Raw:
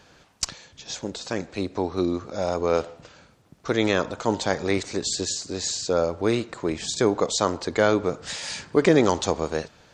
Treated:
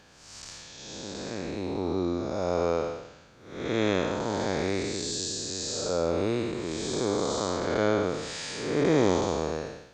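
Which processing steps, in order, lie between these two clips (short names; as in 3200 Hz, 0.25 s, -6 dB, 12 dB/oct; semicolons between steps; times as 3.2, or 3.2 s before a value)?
time blur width 0.311 s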